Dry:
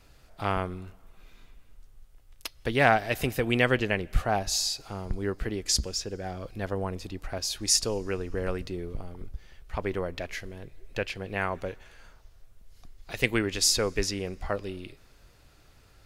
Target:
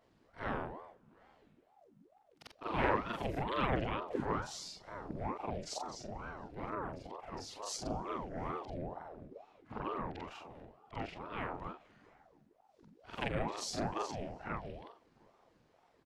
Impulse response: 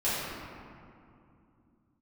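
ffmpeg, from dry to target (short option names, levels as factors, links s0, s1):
-filter_complex "[0:a]afftfilt=real='re':imag='-im':win_size=4096:overlap=0.75,lowpass=8500,acrossover=split=430|1100[s0][s1][s2];[s0]crystalizer=i=8.5:c=0[s3];[s3][s1][s2]amix=inputs=3:normalize=0,asplit=2[s4][s5];[s5]adelay=699.7,volume=0.0398,highshelf=f=4000:g=-15.7[s6];[s4][s6]amix=inputs=2:normalize=0,adynamicequalizer=threshold=0.00562:dfrequency=110:dqfactor=0.79:tfrequency=110:tqfactor=0.79:attack=5:release=100:ratio=0.375:range=1.5:mode=boostabove:tftype=bell,highpass=f=63:p=1,highshelf=f=2200:g=-11,bandreject=f=60:t=h:w=6,bandreject=f=120:t=h:w=6,bandreject=f=180:t=h:w=6,bandreject=f=240:t=h:w=6,aeval=exprs='val(0)*sin(2*PI*500*n/s+500*0.65/2.2*sin(2*PI*2.2*n/s))':c=same,volume=0.891"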